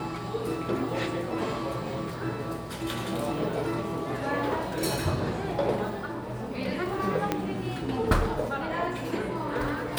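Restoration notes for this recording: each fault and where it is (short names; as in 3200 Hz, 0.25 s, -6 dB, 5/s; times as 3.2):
7.32 pop -11 dBFS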